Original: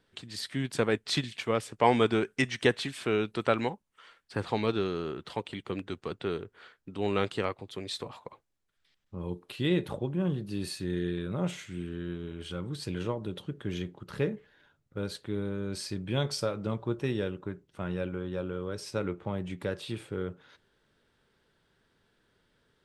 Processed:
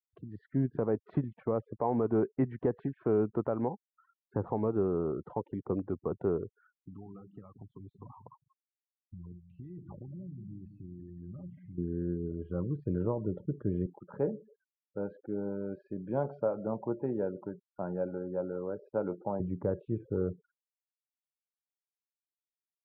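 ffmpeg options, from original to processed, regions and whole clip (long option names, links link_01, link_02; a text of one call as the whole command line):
ffmpeg -i in.wav -filter_complex "[0:a]asettb=1/sr,asplit=3[link_01][link_02][link_03];[link_01]atrim=end=6.594[link_04];[link_02]atrim=start=6.59:end=11.78,asetpts=PTS-STARTPTS,afade=type=in:duration=0.004:curve=qsin,afade=type=out:start_time=5.186:duration=0.004:curve=qsin,equalizer=frequency=450:width=1.2:gain=-12,acompressor=threshold=-44dB:ratio=10:attack=3.2:release=140:knee=1:detection=peak,asplit=2[link_05][link_06];[link_06]adelay=184,lowpass=frequency=1600:poles=1,volume=-9dB,asplit=2[link_07][link_08];[link_08]adelay=184,lowpass=frequency=1600:poles=1,volume=0.48,asplit=2[link_09][link_10];[link_10]adelay=184,lowpass=frequency=1600:poles=1,volume=0.48,asplit=2[link_11][link_12];[link_12]adelay=184,lowpass=frequency=1600:poles=1,volume=0.48,asplit=2[link_13][link_14];[link_14]adelay=184,lowpass=frequency=1600:poles=1,volume=0.48[link_15];[link_05][link_07][link_09][link_11][link_13][link_15]amix=inputs=6:normalize=0,atrim=end_sample=228879[link_16];[link_03]atrim=start=11.776[link_17];[link_04][link_16]acrossfade=duration=0.004:curve1=hsin:curve2=qsin[link_18];[link_18][link_17]acrossfade=duration=0.004:curve1=qsin:curve2=hsin,asettb=1/sr,asplit=3[link_19][link_20][link_21];[link_19]atrim=end=13.864[link_22];[link_20]atrim=start=13.86:end=19.4,asetpts=PTS-STARTPTS,afade=type=in:duration=0.004:curve=qsin,afade=type=out:start_time=5.536:duration=0.004:curve=qsin,highpass=260,lowpass=6200,aecho=1:1:1.3:0.34,atrim=end_sample=244314,asplit=2[link_23][link_24];[link_24]adelay=139,lowpass=frequency=1900:poles=1,volume=-22.5dB,asplit=2[link_25][link_26];[link_26]adelay=139,lowpass=frequency=1900:poles=1,volume=0.46,asplit=2[link_27][link_28];[link_28]adelay=139,lowpass=frequency=1900:poles=1,volume=0.46[link_29];[link_23][link_25][link_27][link_29]amix=inputs=4:normalize=0,atrim=end_sample=244314[link_30];[link_21]atrim=start=19.396[link_31];[link_22][link_30]acrossfade=duration=0.004:curve1=hsin:curve2=qsin[link_32];[link_32][link_31]acrossfade=duration=0.004:curve1=qsin:curve2=hsin,afftfilt=real='re*gte(hypot(re,im),0.00708)':imag='im*gte(hypot(re,im),0.00708)':win_size=1024:overlap=0.75,lowpass=frequency=1000:width=0.5412,lowpass=frequency=1000:width=1.3066,alimiter=limit=-22dB:level=0:latency=1:release=146,volume=3dB" out.wav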